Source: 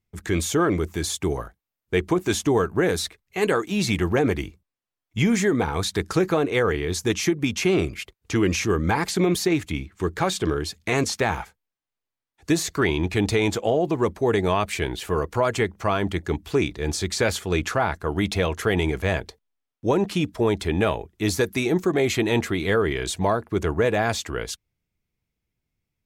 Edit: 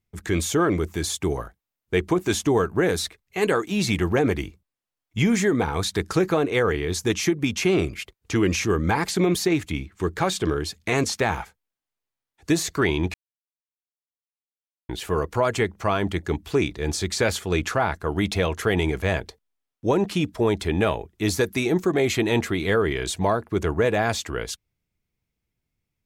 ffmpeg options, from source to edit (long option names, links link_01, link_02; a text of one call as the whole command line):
ffmpeg -i in.wav -filter_complex "[0:a]asplit=3[link_01][link_02][link_03];[link_01]atrim=end=13.14,asetpts=PTS-STARTPTS,afade=type=out:start_time=13.136:duration=0.004:curve=hsin[link_04];[link_02]atrim=start=13.14:end=14.89,asetpts=PTS-STARTPTS,volume=0[link_05];[link_03]atrim=start=14.89,asetpts=PTS-STARTPTS,afade=type=in:duration=0.004:curve=hsin[link_06];[link_04][link_05][link_06]concat=n=3:v=0:a=1" out.wav